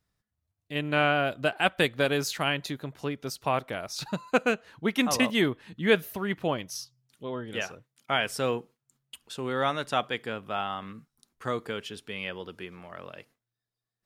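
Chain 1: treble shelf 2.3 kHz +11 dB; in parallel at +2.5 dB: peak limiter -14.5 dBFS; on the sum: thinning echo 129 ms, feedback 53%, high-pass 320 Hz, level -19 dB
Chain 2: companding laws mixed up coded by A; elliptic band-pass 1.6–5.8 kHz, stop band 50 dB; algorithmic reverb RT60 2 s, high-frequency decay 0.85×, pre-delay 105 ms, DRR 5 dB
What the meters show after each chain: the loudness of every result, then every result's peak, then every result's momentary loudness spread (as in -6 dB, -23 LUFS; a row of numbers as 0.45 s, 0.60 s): -20.0 LUFS, -33.5 LUFS; -1.0 dBFS, -13.0 dBFS; 15 LU, 19 LU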